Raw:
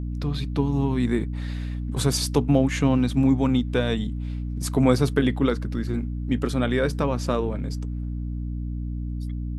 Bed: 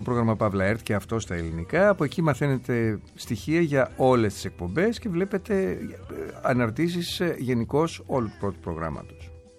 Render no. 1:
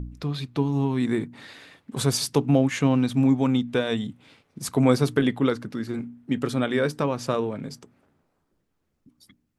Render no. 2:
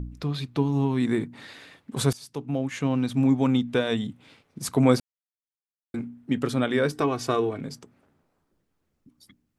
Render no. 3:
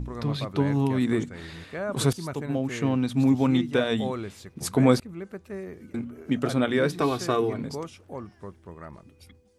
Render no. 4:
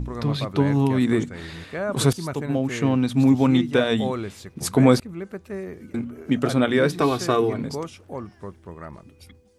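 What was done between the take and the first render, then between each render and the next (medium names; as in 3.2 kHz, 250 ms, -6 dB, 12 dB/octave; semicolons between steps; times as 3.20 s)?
de-hum 60 Hz, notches 5
2.13–3.46 s: fade in, from -22 dB; 5.00–5.94 s: mute; 6.92–7.61 s: comb 2.7 ms, depth 72%
add bed -12 dB
trim +4 dB; peak limiter -3 dBFS, peak gain reduction 1.5 dB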